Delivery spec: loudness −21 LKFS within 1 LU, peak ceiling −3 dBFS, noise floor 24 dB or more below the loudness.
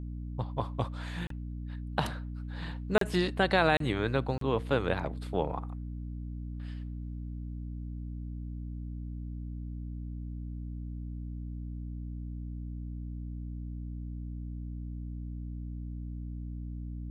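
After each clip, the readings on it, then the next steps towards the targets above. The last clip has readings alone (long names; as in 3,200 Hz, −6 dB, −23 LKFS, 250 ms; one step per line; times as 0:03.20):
number of dropouts 4; longest dropout 33 ms; mains hum 60 Hz; hum harmonics up to 300 Hz; level of the hum −36 dBFS; integrated loudness −35.5 LKFS; sample peak −10.5 dBFS; target loudness −21.0 LKFS
→ repair the gap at 0:01.27/0:02.98/0:03.77/0:04.38, 33 ms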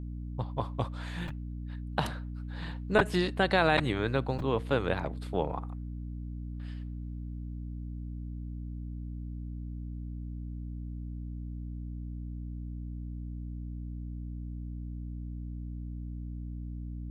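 number of dropouts 0; mains hum 60 Hz; hum harmonics up to 300 Hz; level of the hum −36 dBFS
→ hum removal 60 Hz, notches 5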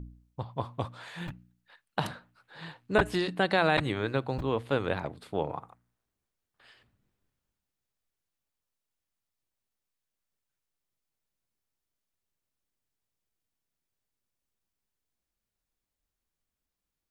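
mains hum none found; integrated loudness −31.0 LKFS; sample peak −10.5 dBFS; target loudness −21.0 LKFS
→ level +10 dB
brickwall limiter −3 dBFS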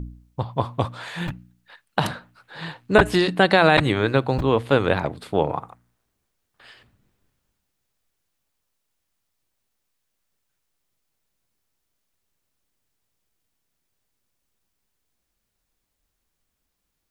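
integrated loudness −21.0 LKFS; sample peak −3.0 dBFS; background noise floor −77 dBFS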